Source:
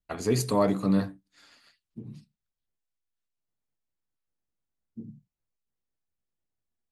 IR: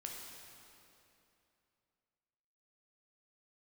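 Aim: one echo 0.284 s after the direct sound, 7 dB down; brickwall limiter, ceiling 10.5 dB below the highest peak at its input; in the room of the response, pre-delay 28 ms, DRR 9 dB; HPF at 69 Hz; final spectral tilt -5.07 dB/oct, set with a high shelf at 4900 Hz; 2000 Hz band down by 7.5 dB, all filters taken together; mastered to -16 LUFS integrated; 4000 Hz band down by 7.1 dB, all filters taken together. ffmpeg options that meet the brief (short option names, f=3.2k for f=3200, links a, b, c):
-filter_complex "[0:a]highpass=69,equalizer=f=2k:t=o:g=-8,equalizer=f=4k:t=o:g=-4,highshelf=f=4.9k:g=-5.5,alimiter=limit=-23.5dB:level=0:latency=1,aecho=1:1:284:0.447,asplit=2[a][b];[1:a]atrim=start_sample=2205,adelay=28[c];[b][c]afir=irnorm=-1:irlink=0,volume=-7dB[d];[a][d]amix=inputs=2:normalize=0,volume=20.5dB"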